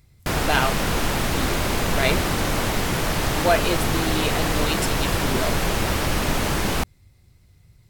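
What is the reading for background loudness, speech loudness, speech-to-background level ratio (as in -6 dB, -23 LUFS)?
-23.0 LUFS, -27.0 LUFS, -4.0 dB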